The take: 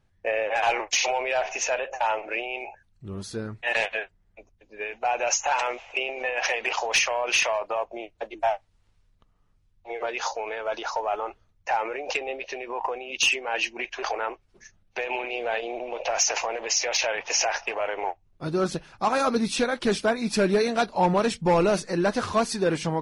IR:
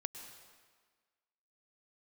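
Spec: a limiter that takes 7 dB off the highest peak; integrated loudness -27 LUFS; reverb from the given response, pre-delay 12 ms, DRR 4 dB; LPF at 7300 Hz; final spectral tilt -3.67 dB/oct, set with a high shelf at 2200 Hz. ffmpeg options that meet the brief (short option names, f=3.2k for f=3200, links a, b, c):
-filter_complex "[0:a]lowpass=7.3k,highshelf=f=2.2k:g=-6,alimiter=limit=-21dB:level=0:latency=1,asplit=2[a][b];[1:a]atrim=start_sample=2205,adelay=12[c];[b][c]afir=irnorm=-1:irlink=0,volume=-2.5dB[d];[a][d]amix=inputs=2:normalize=0,volume=3dB"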